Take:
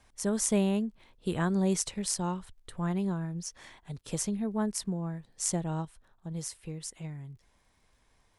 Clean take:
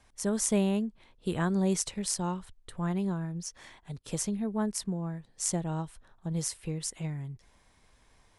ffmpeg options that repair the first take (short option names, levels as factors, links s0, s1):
-af "adeclick=t=4,asetnsamples=n=441:p=0,asendcmd='5.85 volume volume 5dB',volume=1"